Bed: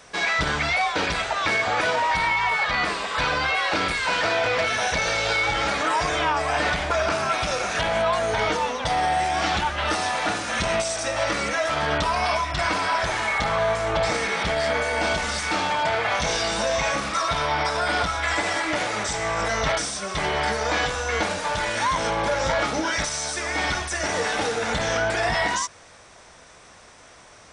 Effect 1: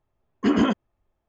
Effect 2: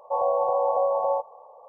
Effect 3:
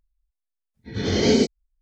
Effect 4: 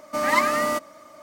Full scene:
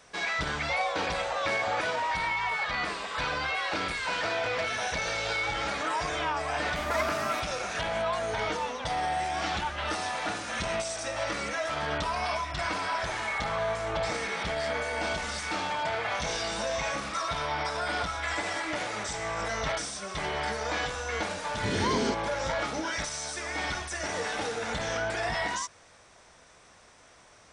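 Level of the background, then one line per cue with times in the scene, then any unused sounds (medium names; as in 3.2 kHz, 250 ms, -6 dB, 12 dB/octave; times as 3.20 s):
bed -7.5 dB
0.59 s: add 2 -3.5 dB + compression, threshold -28 dBFS
6.62 s: add 4 -12 dB
20.68 s: add 3 -4.5 dB + compression, threshold -20 dBFS
not used: 1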